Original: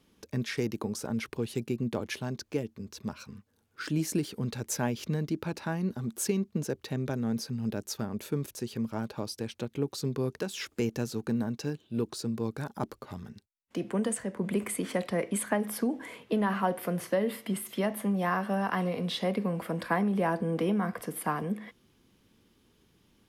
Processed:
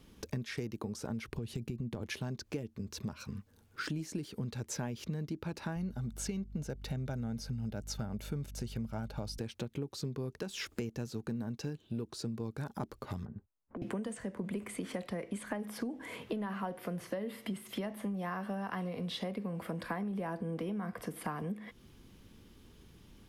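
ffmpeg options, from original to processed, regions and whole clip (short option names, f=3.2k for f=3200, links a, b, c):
-filter_complex "[0:a]asettb=1/sr,asplit=3[a][b][c];[a]atrim=end=1.254[d];[b]atrim=start=1.25:end=2.03,asetpts=PTS-STARTPTS,afade=t=in:d=0.004:c=qsin,afade=t=out:st=0.776:d=0.004:c=qsin,acompressor=threshold=-35dB:ratio=3:attack=3.2:release=140:knee=1:detection=peak,lowshelf=f=240:g=7.5[e];[c]atrim=start=2.026[f];[d][e]acrossfade=d=0.004:c1=hsin:c2=qsin[g];[g][f]acrossfade=d=0.004:c1=qsin:c2=hsin,asettb=1/sr,asplit=3[h][i][j];[h]atrim=end=5.764[k];[i]atrim=start=5.76:end=9.38,asetpts=PTS-STARTPTS,afade=t=in:d=0.004:c=qsin,afade=t=out:st=3.616:d=0.004:c=qsin,aecho=1:1:1.4:0.41,atrim=end_sample=159642,aeval=exprs='val(0)+0.00355*(sin(2*PI*50*n/s)+sin(2*PI*2*50*n/s)/2+sin(2*PI*3*50*n/s)/3+sin(2*PI*4*50*n/s)/4+sin(2*PI*5*50*n/s)/5)':c=same[l];[j]atrim=start=9.376[m];[k][l]acrossfade=d=0.004:c1=hsin:c2=qsin[n];[n][m]acrossfade=d=0.004:c1=qsin:c2=hsin,asettb=1/sr,asplit=3[o][p][q];[o]atrim=end=13.254[r];[p]atrim=start=13.25:end=13.82,asetpts=PTS-STARTPTS,afade=t=in:d=0.004:c=qsin,afade=t=out:st=0.566:d=0.004:c=qsin,lowpass=f=1.3k:w=0.5412,lowpass=f=1.3k:w=1.3066,acompressor=threshold=-44dB:ratio=12:attack=3.2:release=140:knee=1:detection=peak,asoftclip=type=hard:threshold=-38.5dB[s];[q]atrim=start=13.816[t];[r][s]acrossfade=d=0.004:c1=hsin:c2=qsin[u];[u][t]acrossfade=d=0.004:c1=qsin:c2=hsin,acrossover=split=7500[v][w];[w]acompressor=threshold=-49dB:ratio=4:attack=1:release=60[x];[v][x]amix=inputs=2:normalize=0,lowshelf=f=93:g=12,acompressor=threshold=-41dB:ratio=5,volume=4.5dB"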